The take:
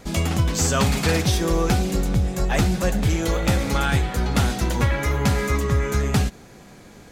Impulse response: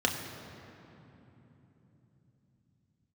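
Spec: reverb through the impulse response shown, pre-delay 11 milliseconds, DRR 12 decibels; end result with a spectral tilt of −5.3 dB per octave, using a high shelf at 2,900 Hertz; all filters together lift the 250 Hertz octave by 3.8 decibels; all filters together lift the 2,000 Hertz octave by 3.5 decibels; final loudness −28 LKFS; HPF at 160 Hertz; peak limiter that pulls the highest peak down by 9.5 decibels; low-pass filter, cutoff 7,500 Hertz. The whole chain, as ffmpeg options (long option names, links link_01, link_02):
-filter_complex "[0:a]highpass=160,lowpass=7500,equalizer=frequency=250:width_type=o:gain=7,equalizer=frequency=2000:width_type=o:gain=7,highshelf=frequency=2900:gain=-7.5,alimiter=limit=-15dB:level=0:latency=1,asplit=2[link_01][link_02];[1:a]atrim=start_sample=2205,adelay=11[link_03];[link_02][link_03]afir=irnorm=-1:irlink=0,volume=-22dB[link_04];[link_01][link_04]amix=inputs=2:normalize=0,volume=-4dB"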